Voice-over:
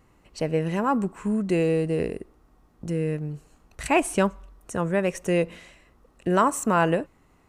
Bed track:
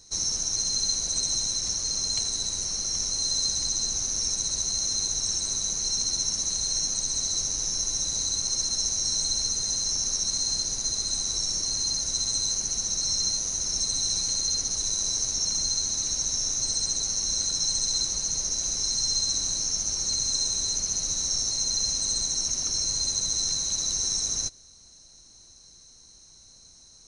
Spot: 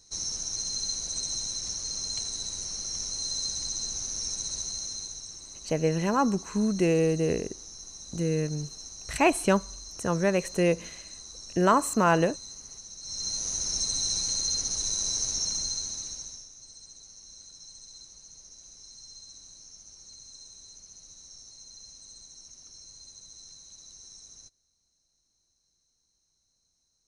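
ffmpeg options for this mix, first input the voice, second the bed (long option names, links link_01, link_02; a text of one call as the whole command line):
ffmpeg -i stem1.wav -i stem2.wav -filter_complex "[0:a]adelay=5300,volume=-1dB[link_01];[1:a]volume=9dB,afade=type=out:start_time=4.55:duration=0.8:silence=0.281838,afade=type=in:start_time=13.01:duration=0.49:silence=0.188365,afade=type=out:start_time=15.33:duration=1.15:silence=0.1[link_02];[link_01][link_02]amix=inputs=2:normalize=0" out.wav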